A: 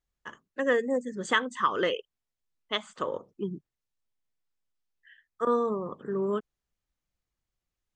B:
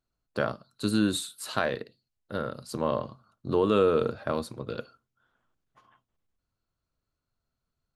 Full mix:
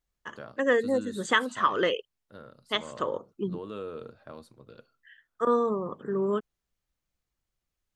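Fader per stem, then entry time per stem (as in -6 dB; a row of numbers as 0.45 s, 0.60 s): +1.5 dB, -15.5 dB; 0.00 s, 0.00 s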